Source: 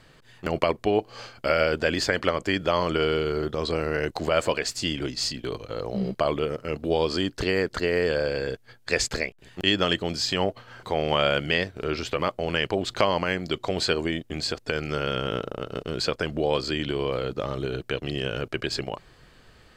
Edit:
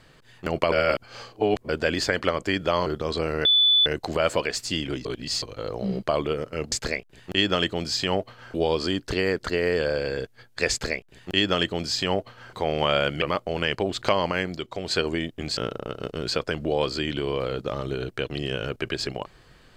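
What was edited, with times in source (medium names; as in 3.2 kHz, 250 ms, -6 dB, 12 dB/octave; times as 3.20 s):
0.72–1.69 s: reverse
2.86–3.39 s: delete
3.98 s: add tone 3.48 kHz -15 dBFS 0.41 s
5.17–5.54 s: reverse
9.01–10.83 s: copy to 6.84 s
11.52–12.14 s: delete
13.49–13.83 s: gain -5 dB
14.49–15.29 s: delete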